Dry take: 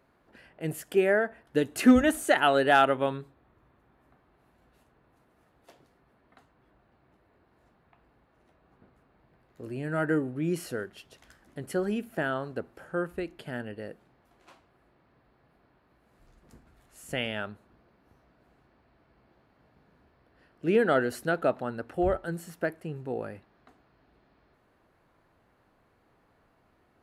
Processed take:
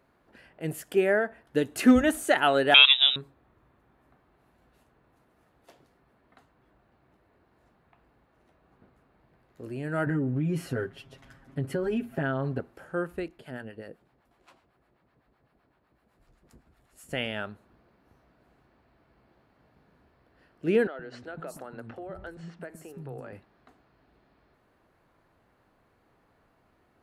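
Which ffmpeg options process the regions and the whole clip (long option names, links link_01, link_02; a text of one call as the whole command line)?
ffmpeg -i in.wav -filter_complex "[0:a]asettb=1/sr,asplit=3[link_01][link_02][link_03];[link_01]atrim=end=2.744[link_04];[link_02]atrim=start=2.74:end=3.16,asetpts=PTS-STARTPTS,afade=type=in:duration=0.004:curve=qsin,afade=type=out:start_time=0.416:duration=0.004:curve=qsin,acontrast=55,lowpass=frequency=3400:width_type=q:width=0.5098,lowpass=frequency=3400:width_type=q:width=0.6013,lowpass=frequency=3400:width_type=q:width=0.9,lowpass=frequency=3400:width_type=q:width=2.563,afreqshift=-4000[link_05];[link_03]atrim=start=3.156[link_06];[link_04][link_05]acrossfade=duration=0.004:curve1=hsin:curve2=qsin[link_07];[link_07][link_06]acrossfade=duration=0.004:curve1=qsin:curve2=hsin,asettb=1/sr,asplit=3[link_08][link_09][link_10];[link_08]atrim=end=10.064[link_11];[link_09]atrim=start=10.06:end=12.6,asetpts=PTS-STARTPTS,afade=type=in:duration=0.004:curve=qsin,afade=type=out:start_time=2.536:duration=0.004:curve=qsin,bass=frequency=250:gain=8,treble=frequency=4000:gain=-8,aecho=1:1:7.4:0.94,atrim=end_sample=112014,acompressor=threshold=-24dB:ratio=6:attack=3.2:release=140:knee=1:detection=peak[link_12];[link_10]atrim=start=12.596[link_13];[link_11][link_12]acrossfade=duration=0.004:curve1=hsin:curve2=qsin[link_14];[link_14][link_13]acrossfade=duration=0.004:curve1=qsin:curve2=hsin,asettb=1/sr,asplit=3[link_15][link_16][link_17];[link_15]atrim=end=13.284[link_18];[link_16]atrim=start=13.28:end=17.12,asetpts=PTS-STARTPTS,afade=type=in:duration=0.004:curve=qsin,afade=type=out:start_time=3.836:duration=0.004:curve=qsin,bandreject=frequency=6200:width=18,acrossover=split=660[link_19][link_20];[link_19]aeval=exprs='val(0)*(1-0.7/2+0.7/2*cos(2*PI*7.9*n/s))':channel_layout=same[link_21];[link_20]aeval=exprs='val(0)*(1-0.7/2-0.7/2*cos(2*PI*7.9*n/s))':channel_layout=same[link_22];[link_21][link_22]amix=inputs=2:normalize=0[link_23];[link_17]atrim=start=17.116[link_24];[link_18][link_23]acrossfade=duration=0.004:curve1=hsin:curve2=qsin[link_25];[link_25][link_24]acrossfade=duration=0.004:curve1=qsin:curve2=hsin,asettb=1/sr,asplit=3[link_26][link_27][link_28];[link_26]atrim=end=20.874[link_29];[link_27]atrim=start=20.87:end=23.33,asetpts=PTS-STARTPTS,afade=type=in:duration=0.004:curve=qsin,afade=type=out:start_time=2.456:duration=0.004:curve=qsin,highshelf=frequency=7800:gain=-7.5,acompressor=threshold=-34dB:ratio=16:attack=3.2:release=140:knee=1:detection=peak,acrossover=split=270|5400[link_30][link_31][link_32];[link_30]adelay=120[link_33];[link_32]adelay=370[link_34];[link_33][link_31][link_34]amix=inputs=3:normalize=0,atrim=end_sample=108486[link_35];[link_28]atrim=start=23.326[link_36];[link_29][link_35]acrossfade=duration=0.004:curve1=hsin:curve2=qsin[link_37];[link_37][link_36]acrossfade=duration=0.004:curve1=qsin:curve2=hsin" out.wav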